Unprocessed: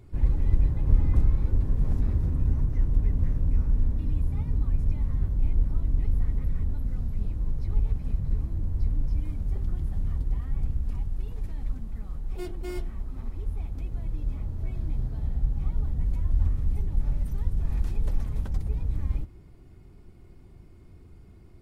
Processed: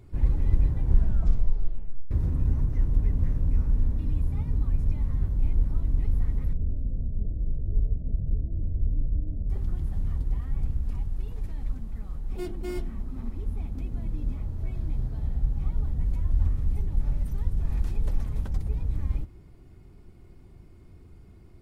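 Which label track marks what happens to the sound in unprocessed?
0.730000	0.730000	tape stop 1.38 s
6.530000	9.500000	Chebyshev low-pass filter 660 Hz, order 5
12.290000	14.340000	parametric band 230 Hz +8 dB

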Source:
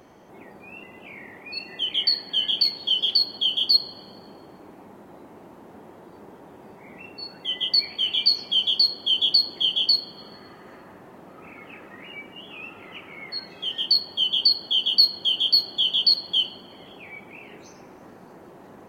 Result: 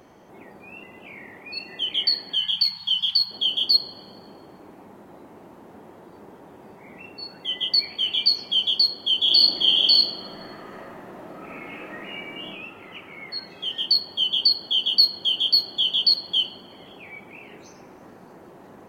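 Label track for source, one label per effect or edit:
2.350000	3.310000	elliptic band-stop filter 190–880 Hz
9.230000	12.460000	thrown reverb, RT60 0.97 s, DRR −4 dB

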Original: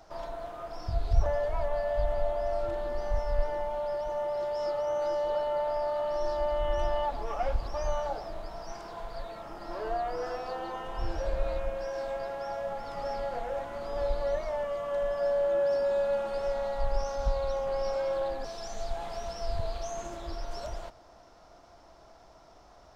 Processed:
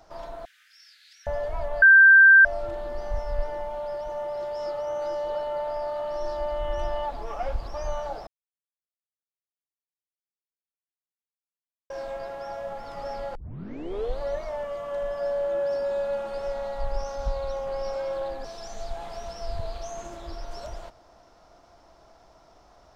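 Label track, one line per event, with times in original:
0.450000	1.270000	Butterworth high-pass 1,600 Hz 72 dB per octave
1.820000	2.450000	beep over 1,570 Hz −9.5 dBFS
8.270000	11.900000	silence
13.350000	13.350000	tape start 0.86 s

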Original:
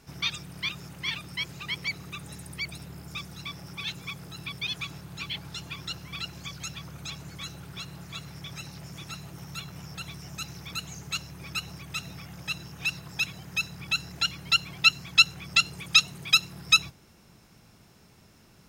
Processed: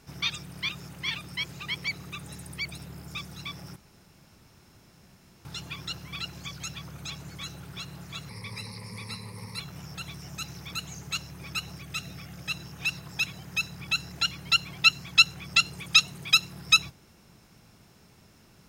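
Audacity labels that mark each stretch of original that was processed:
3.760000	5.450000	fill with room tone
8.290000	9.600000	EQ curve with evenly spaced ripples crests per octave 0.91, crest to trough 18 dB
11.760000	12.490000	parametric band 950 Hz −10 dB 0.22 octaves

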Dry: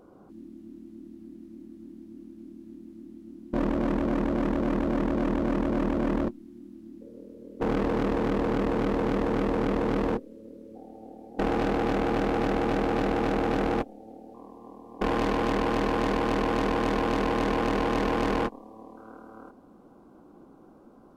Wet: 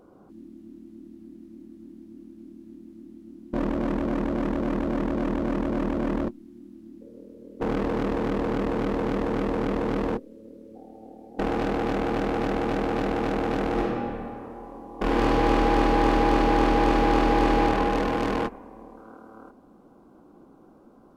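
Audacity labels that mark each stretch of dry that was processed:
13.710000	17.620000	thrown reverb, RT60 2.5 s, DRR −3 dB

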